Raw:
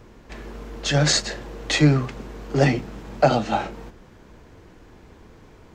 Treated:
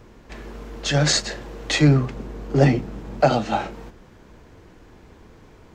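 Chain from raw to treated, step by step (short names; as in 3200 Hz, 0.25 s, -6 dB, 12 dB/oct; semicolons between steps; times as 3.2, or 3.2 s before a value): 1.88–3.21 tilt shelf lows +3.5 dB, about 790 Hz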